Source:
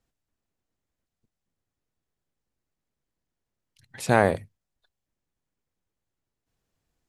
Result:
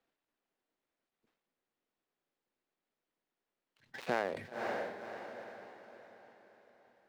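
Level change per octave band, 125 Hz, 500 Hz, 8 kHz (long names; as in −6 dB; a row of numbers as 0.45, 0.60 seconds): −22.5, −11.0, −18.5 decibels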